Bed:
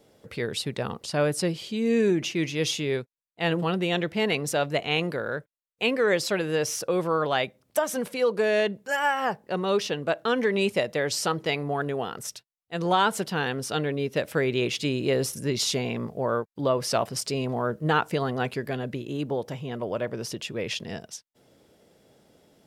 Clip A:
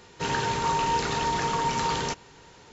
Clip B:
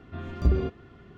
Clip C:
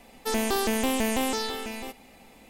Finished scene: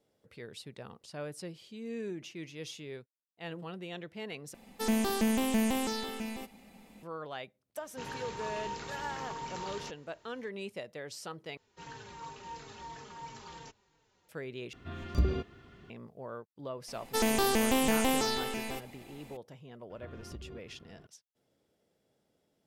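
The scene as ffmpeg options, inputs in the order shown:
ffmpeg -i bed.wav -i cue0.wav -i cue1.wav -i cue2.wav -filter_complex "[3:a]asplit=2[link_01][link_02];[1:a]asplit=2[link_03][link_04];[2:a]asplit=2[link_05][link_06];[0:a]volume=-16.5dB[link_07];[link_01]equalizer=frequency=200:width=3.7:gain=12.5[link_08];[link_04]asplit=2[link_09][link_10];[link_10]adelay=4,afreqshift=-2.9[link_11];[link_09][link_11]amix=inputs=2:normalize=1[link_12];[link_05]highshelf=frequency=2200:gain=10[link_13];[link_06]acompressor=threshold=-35dB:ratio=6:attack=3.2:release=140:knee=1:detection=peak[link_14];[link_07]asplit=4[link_15][link_16][link_17][link_18];[link_15]atrim=end=4.544[link_19];[link_08]atrim=end=2.49,asetpts=PTS-STARTPTS,volume=-6.5dB[link_20];[link_16]atrim=start=7.026:end=11.574[link_21];[link_12]atrim=end=2.72,asetpts=PTS-STARTPTS,volume=-17.5dB[link_22];[link_17]atrim=start=14.286:end=14.734[link_23];[link_13]atrim=end=1.17,asetpts=PTS-STARTPTS,volume=-5.5dB[link_24];[link_18]atrim=start=15.896[link_25];[link_03]atrim=end=2.72,asetpts=PTS-STARTPTS,volume=-14.5dB,afade=type=in:duration=0.004:curve=hsin,afade=type=out:start_time=2.716:duration=0.004:curve=hsin,adelay=7770[link_26];[link_02]atrim=end=2.49,asetpts=PTS-STARTPTS,volume=-1.5dB,afade=type=in:duration=0.004:curve=hsin,afade=type=out:start_time=2.486:duration=0.004:curve=hsin,adelay=16880[link_27];[link_14]atrim=end=1.17,asetpts=PTS-STARTPTS,volume=-8.5dB,afade=type=in:duration=0.004:curve=hsin,afade=type=out:start_time=1.166:duration=0.004:curve=hsin,adelay=19900[link_28];[link_19][link_20]acrossfade=duration=0.004:curve1=hsin:curve2=hsin[link_29];[link_29][link_21]acrossfade=duration=0.004:curve1=hsin:curve2=hsin[link_30];[link_30][link_22]acrossfade=duration=0.004:curve1=hsin:curve2=hsin[link_31];[link_31][link_23]acrossfade=duration=0.004:curve1=hsin:curve2=hsin[link_32];[link_32][link_24]acrossfade=duration=0.004:curve1=hsin:curve2=hsin[link_33];[link_33][link_25]acrossfade=duration=0.004:curve1=hsin:curve2=hsin[link_34];[link_34][link_26][link_27][link_28]amix=inputs=4:normalize=0" out.wav

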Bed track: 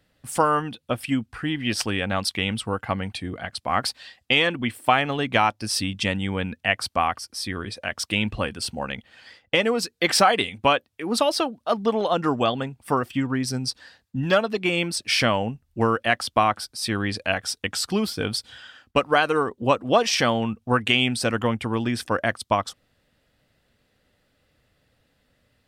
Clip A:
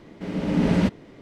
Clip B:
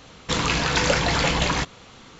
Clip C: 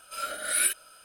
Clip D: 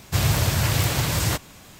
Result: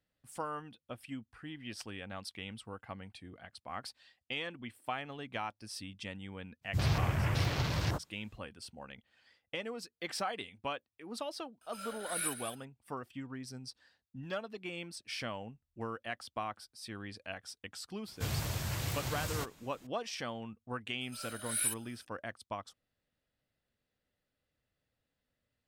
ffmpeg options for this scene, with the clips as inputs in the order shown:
ffmpeg -i bed.wav -i cue0.wav -i cue1.wav -i cue2.wav -i cue3.wav -filter_complex "[4:a]asplit=2[link_01][link_02];[3:a]asplit=2[link_03][link_04];[0:a]volume=-19dB[link_05];[link_01]afwtdn=0.0316[link_06];[link_03]aecho=1:1:211:0.299[link_07];[link_04]equalizer=frequency=840:width=0.32:gain=-8[link_08];[link_06]atrim=end=1.79,asetpts=PTS-STARTPTS,volume=-9dB,afade=type=in:duration=0.05,afade=type=out:start_time=1.74:duration=0.05,adelay=6610[link_09];[link_07]atrim=end=1.04,asetpts=PTS-STARTPTS,volume=-11.5dB,afade=type=in:duration=0.004:curve=hsin,afade=type=out:start_time=1.036:duration=0.004:curve=hsin,adelay=11610[link_10];[link_02]atrim=end=1.79,asetpts=PTS-STARTPTS,volume=-15dB,afade=type=in:duration=0.004:curve=hsin,afade=type=out:start_time=1.786:duration=0.004:curve=hsin,adelay=18080[link_11];[link_08]atrim=end=1.04,asetpts=PTS-STARTPTS,volume=-7dB,afade=type=in:duration=0.004:curve=hsin,afade=type=out:start_time=1.036:duration=0.004:curve=hsin,adelay=21010[link_12];[link_05][link_09][link_10][link_11][link_12]amix=inputs=5:normalize=0" out.wav

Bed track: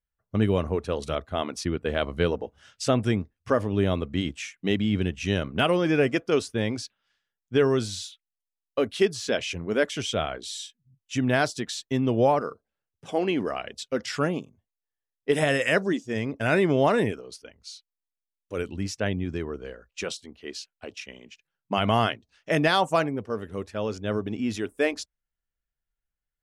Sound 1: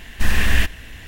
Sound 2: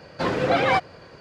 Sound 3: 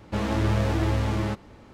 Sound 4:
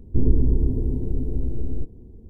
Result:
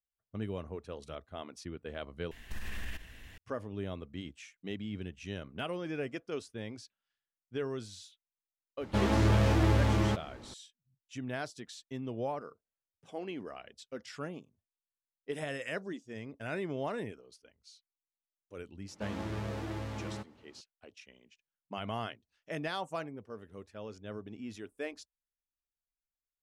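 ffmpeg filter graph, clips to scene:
ffmpeg -i bed.wav -i cue0.wav -i cue1.wav -i cue2.wav -filter_complex "[3:a]asplit=2[link_01][link_02];[0:a]volume=-15dB[link_03];[1:a]acompressor=threshold=-20dB:ratio=6:attack=3.2:release=140:knee=1:detection=peak[link_04];[link_01]volume=17dB,asoftclip=hard,volume=-17dB[link_05];[link_02]highpass=97[link_06];[link_03]asplit=2[link_07][link_08];[link_07]atrim=end=2.314[link_09];[link_04]atrim=end=1.07,asetpts=PTS-STARTPTS,volume=-13.5dB[link_10];[link_08]atrim=start=3.376[link_11];[link_05]atrim=end=1.73,asetpts=PTS-STARTPTS,volume=-1.5dB,afade=type=in:duration=0.004:curve=hsin,afade=type=out:start_time=1.726:duration=0.004:curve=hsin,adelay=8810[link_12];[link_06]atrim=end=1.73,asetpts=PTS-STARTPTS,volume=-12.5dB,afade=type=in:duration=0.004:curve=hsin,afade=type=out:start_time=1.726:duration=0.004:curve=hsin,adelay=18880[link_13];[link_09][link_10]acrossfade=duration=0.004:curve1=hsin:curve2=hsin[link_14];[link_14][link_11]acrossfade=duration=0.004:curve1=hsin:curve2=hsin[link_15];[link_15][link_12][link_13]amix=inputs=3:normalize=0" out.wav

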